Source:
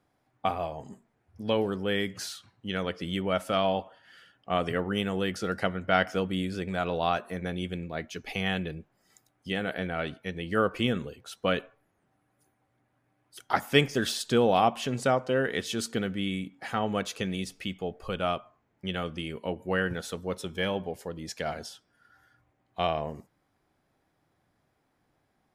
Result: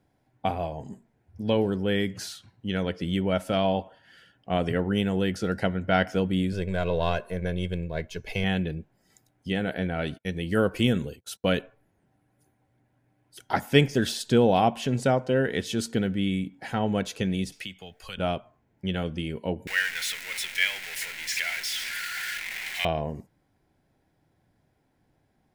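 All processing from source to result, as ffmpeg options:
ffmpeg -i in.wav -filter_complex "[0:a]asettb=1/sr,asplit=3[link_01][link_02][link_03];[link_01]atrim=end=6.524[link_04];[link_02]atrim=start=6.52:end=8.44,asetpts=PTS-STARTPTS,afade=type=in:duration=0.004:curve=qsin,afade=type=out:start_time=1.916:duration=0.004:curve=qsin,aeval=exprs='if(lt(val(0),0),0.708*val(0),val(0))':channel_layout=same,aecho=1:1:1.9:0.61,atrim=end_sample=84672[link_05];[link_03]atrim=start=8.436[link_06];[link_04][link_05]acrossfade=duration=0.004:curve1=hsin:curve2=qsin[link_07];[link_07][link_06]acrossfade=duration=0.004:curve1=qsin:curve2=hsin,asettb=1/sr,asplit=3[link_08][link_09][link_10];[link_08]atrim=end=10.024[link_11];[link_09]atrim=start=10.02:end=11.59,asetpts=PTS-STARTPTS,afade=type=in:duration=0.004:curve=qsin,afade=type=out:start_time=1.566:duration=0.004:curve=qsin,agate=range=-28dB:threshold=-51dB:ratio=16:release=100:detection=peak,highshelf=frequency=5800:gain=11[link_12];[link_10]atrim=start=11.586[link_13];[link_11][link_12]acrossfade=duration=0.004:curve1=hsin:curve2=qsin[link_14];[link_14][link_13]acrossfade=duration=0.004:curve1=qsin:curve2=hsin,asettb=1/sr,asplit=3[link_15][link_16][link_17];[link_15]atrim=end=17.524[link_18];[link_16]atrim=start=17.52:end=18.18,asetpts=PTS-STARTPTS,afade=type=in:duration=0.004:curve=qsin,afade=type=out:start_time=0.656:duration=0.004:curve=qsin,tiltshelf=frequency=760:gain=-10,acrossover=split=160|1200|3500[link_19][link_20][link_21][link_22];[link_19]acompressor=threshold=-53dB:ratio=3[link_23];[link_20]acompressor=threshold=-52dB:ratio=3[link_24];[link_21]acompressor=threshold=-41dB:ratio=3[link_25];[link_22]acompressor=threshold=-48dB:ratio=3[link_26];[link_23][link_24][link_25][link_26]amix=inputs=4:normalize=0[link_27];[link_17]atrim=start=18.176[link_28];[link_18][link_27]acrossfade=duration=0.004:curve1=hsin:curve2=qsin[link_29];[link_29][link_28]acrossfade=duration=0.004:curve1=qsin:curve2=hsin,asettb=1/sr,asplit=3[link_30][link_31][link_32];[link_30]atrim=end=19.674[link_33];[link_31]atrim=start=19.67:end=22.85,asetpts=PTS-STARTPTS,afade=type=in:duration=0.004:curve=qsin,afade=type=out:start_time=3.176:duration=0.004:curve=qsin,aeval=exprs='val(0)+0.5*0.0376*sgn(val(0))':channel_layout=same,highpass=frequency=2100:width_type=q:width=3.9,acrusher=bits=8:dc=4:mix=0:aa=0.000001[link_34];[link_32]atrim=start=22.846[link_35];[link_33][link_34]acrossfade=duration=0.004:curve1=hsin:curve2=qsin[link_36];[link_36][link_35]acrossfade=duration=0.004:curve1=qsin:curve2=hsin,lowshelf=frequency=320:gain=7.5,bandreject=frequency=1200:width=5.4" out.wav

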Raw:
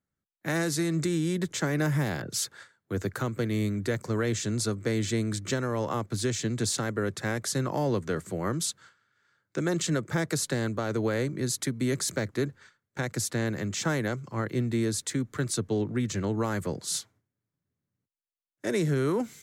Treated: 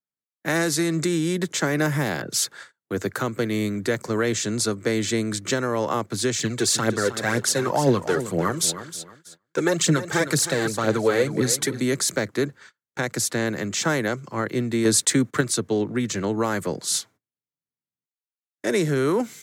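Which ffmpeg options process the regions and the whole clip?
ffmpeg -i in.wav -filter_complex "[0:a]asettb=1/sr,asplit=3[link_01][link_02][link_03];[link_01]atrim=end=6.394[link_04];[link_02]atrim=start=6.39:end=11.8,asetpts=PTS-STARTPTS,afade=type=in:duration=0.004:curve=qsin,afade=type=out:start_time=5.406:duration=0.004:curve=qsin,aphaser=in_gain=1:out_gain=1:delay=2.8:decay=0.58:speed=2:type=triangular,aecho=1:1:314|628|942:0.251|0.0678|0.0183,atrim=end_sample=238581[link_05];[link_03]atrim=start=11.796[link_06];[link_04][link_05]acrossfade=duration=0.004:curve1=hsin:curve2=qsin[link_07];[link_07][link_06]acrossfade=duration=0.004:curve1=qsin:curve2=hsin,asettb=1/sr,asplit=3[link_08][link_09][link_10];[link_08]atrim=end=14.854[link_11];[link_09]atrim=start=14.85:end=15.41,asetpts=PTS-STARTPTS,afade=type=in:duration=0.004:curve=qsin,afade=type=out:start_time=0.556:duration=0.004:curve=qsin,agate=range=-20dB:threshold=-49dB:ratio=16:release=100:detection=peak,equalizer=frequency=8400:width=7.6:gain=4,acontrast=30[link_12];[link_10]atrim=start=15.406[link_13];[link_11][link_12]acrossfade=duration=0.004:curve1=hsin:curve2=qsin[link_14];[link_14][link_13]acrossfade=duration=0.004:curve1=qsin:curve2=hsin,highpass=92,agate=range=-19dB:threshold=-53dB:ratio=16:detection=peak,lowshelf=frequency=130:gain=-11.5,volume=7dB" out.wav

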